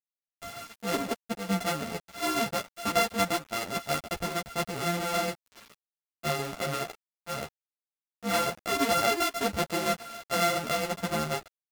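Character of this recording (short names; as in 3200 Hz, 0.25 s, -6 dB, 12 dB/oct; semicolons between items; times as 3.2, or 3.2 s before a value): a buzz of ramps at a fixed pitch in blocks of 64 samples; tremolo saw down 7.2 Hz, depth 45%; a quantiser's noise floor 8-bit, dither none; a shimmering, thickened sound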